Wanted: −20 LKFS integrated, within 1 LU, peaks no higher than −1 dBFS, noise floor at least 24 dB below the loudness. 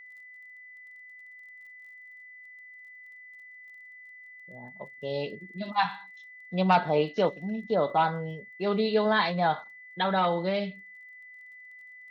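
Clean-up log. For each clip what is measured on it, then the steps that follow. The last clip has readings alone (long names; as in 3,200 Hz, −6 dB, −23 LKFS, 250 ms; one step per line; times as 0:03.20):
crackle rate 22 per second; interfering tone 2,000 Hz; level of the tone −46 dBFS; integrated loudness −28.0 LKFS; sample peak −11.5 dBFS; target loudness −20.0 LKFS
→ click removal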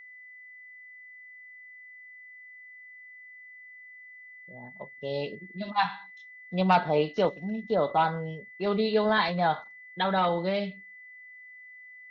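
crackle rate 0 per second; interfering tone 2,000 Hz; level of the tone −46 dBFS
→ notch filter 2,000 Hz, Q 30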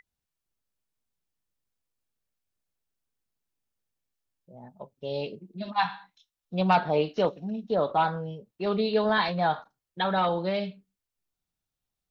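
interfering tone none found; integrated loudness −27.5 LKFS; sample peak −12.0 dBFS; target loudness −20.0 LKFS
→ level +7.5 dB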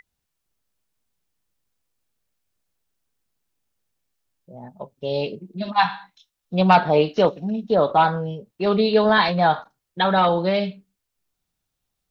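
integrated loudness −20.0 LKFS; sample peak −4.5 dBFS; background noise floor −80 dBFS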